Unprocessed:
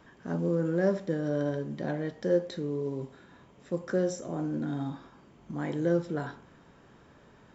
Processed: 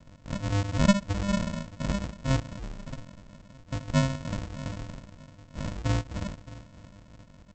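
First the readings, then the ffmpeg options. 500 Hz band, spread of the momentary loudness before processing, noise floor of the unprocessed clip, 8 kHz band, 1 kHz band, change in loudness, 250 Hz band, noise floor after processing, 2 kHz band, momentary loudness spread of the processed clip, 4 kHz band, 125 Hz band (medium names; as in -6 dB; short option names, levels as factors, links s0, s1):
-7.5 dB, 9 LU, -57 dBFS, no reading, +5.5 dB, +1.0 dB, +0.5 dB, -54 dBFS, +4.0 dB, 20 LU, +11.5 dB, +6.0 dB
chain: -filter_complex "[0:a]highpass=f=590:w=0.5412,highpass=f=590:w=1.3066,aemphasis=mode=reproduction:type=75fm,asplit=2[s0][s1];[s1]adelay=20,volume=0.596[s2];[s0][s2]amix=inputs=2:normalize=0,aecho=1:1:620|1240|1860:0.119|0.0404|0.0137,aresample=16000,acrusher=samples=40:mix=1:aa=0.000001,aresample=44100,volume=2.66"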